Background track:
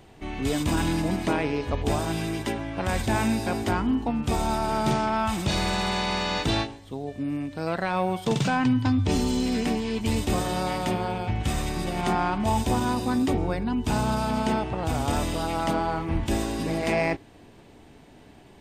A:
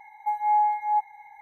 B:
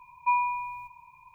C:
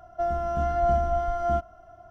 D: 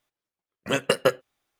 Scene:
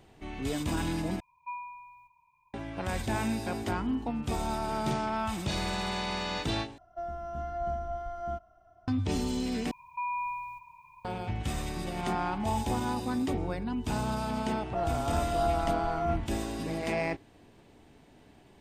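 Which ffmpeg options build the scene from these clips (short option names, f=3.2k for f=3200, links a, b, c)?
-filter_complex "[2:a]asplit=2[a][b];[3:a]asplit=2[c][d];[0:a]volume=-6.5dB[e];[b]alimiter=level_in=2.5dB:limit=-24dB:level=0:latency=1:release=71,volume=-2.5dB[f];[1:a]alimiter=limit=-23.5dB:level=0:latency=1:release=71[g];[e]asplit=4[h][i][j][k];[h]atrim=end=1.204[l];[a]atrim=end=1.34,asetpts=PTS-STARTPTS,volume=-14.5dB[m];[i]atrim=start=2.536:end=6.784[n];[c]atrim=end=2.1,asetpts=PTS-STARTPTS,volume=-10.5dB[o];[j]atrim=start=8.876:end=9.714[p];[f]atrim=end=1.34,asetpts=PTS-STARTPTS,volume=-1dB[q];[k]atrim=start=11.046[r];[g]atrim=end=1.41,asetpts=PTS-STARTPTS,volume=-13.5dB,afade=t=in:d=0.004:c=hsin,afade=t=out:st=1.406:d=0.004:c=hsin,adelay=12000[s];[d]atrim=end=2.1,asetpts=PTS-STARTPTS,volume=-6dB,afade=t=in:d=0.004:c=hsin,afade=t=out:st=2.096:d=0.004:c=hsin,adelay=14560[t];[l][m]acrossfade=d=0.004:c1=hsin:c2=hsin[u];[u][n]acrossfade=d=0.004:c1=hsin:c2=hsin[v];[v][o]acrossfade=d=0.004:c1=hsin:c2=hsin[w];[w][p]acrossfade=d=0.004:c1=hsin:c2=hsin[x];[x][q]acrossfade=d=0.004:c1=hsin:c2=hsin[y];[y][r]acrossfade=d=0.004:c1=hsin:c2=hsin[z];[z][s][t]amix=inputs=3:normalize=0"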